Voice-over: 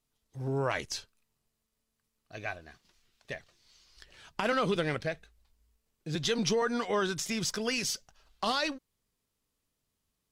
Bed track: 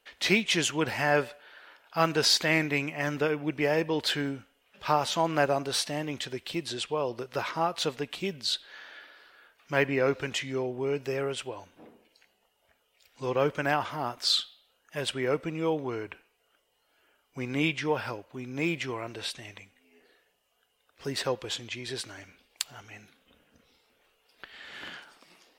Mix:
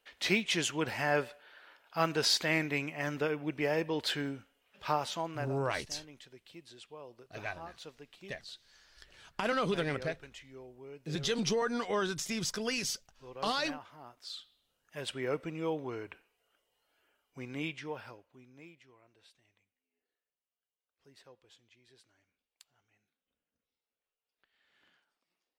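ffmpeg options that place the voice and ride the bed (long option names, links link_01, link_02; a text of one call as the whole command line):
ffmpeg -i stem1.wav -i stem2.wav -filter_complex "[0:a]adelay=5000,volume=-2.5dB[link_01];[1:a]volume=8dB,afade=type=out:start_time=4.85:duration=0.69:silence=0.199526,afade=type=in:start_time=14.36:duration=0.89:silence=0.223872,afade=type=out:start_time=16.83:duration=1.9:silence=0.0794328[link_02];[link_01][link_02]amix=inputs=2:normalize=0" out.wav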